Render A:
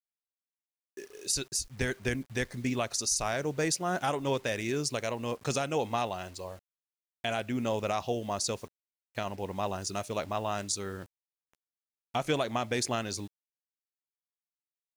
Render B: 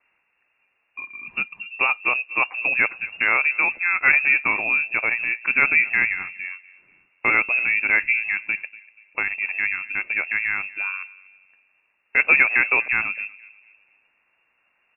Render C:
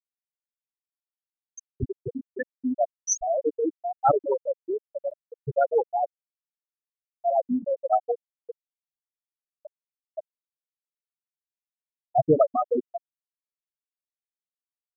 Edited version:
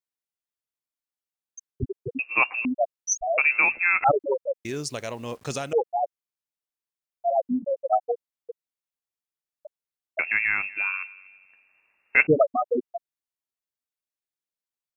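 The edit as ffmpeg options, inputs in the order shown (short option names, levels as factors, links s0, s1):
-filter_complex "[1:a]asplit=3[s0][s1][s2];[2:a]asplit=5[s3][s4][s5][s6][s7];[s3]atrim=end=2.192[s8];[s0]atrim=start=2.188:end=2.652[s9];[s4]atrim=start=2.648:end=3.382[s10];[s1]atrim=start=3.378:end=4.042[s11];[s5]atrim=start=4.038:end=4.652[s12];[0:a]atrim=start=4.648:end=5.732[s13];[s6]atrim=start=5.728:end=10.192[s14];[s2]atrim=start=10.188:end=12.272[s15];[s7]atrim=start=12.268[s16];[s8][s9]acrossfade=d=0.004:c1=hsin:c2=hsin[s17];[s17][s10]acrossfade=d=0.004:c1=hsin:c2=hsin[s18];[s18][s11]acrossfade=d=0.004:c1=hsin:c2=hsin[s19];[s19][s12]acrossfade=d=0.004:c1=hsin:c2=hsin[s20];[s20][s13]acrossfade=d=0.004:c1=hsin:c2=hsin[s21];[s21][s14]acrossfade=d=0.004:c1=hsin:c2=hsin[s22];[s22][s15]acrossfade=d=0.004:c1=hsin:c2=hsin[s23];[s23][s16]acrossfade=d=0.004:c1=hsin:c2=hsin"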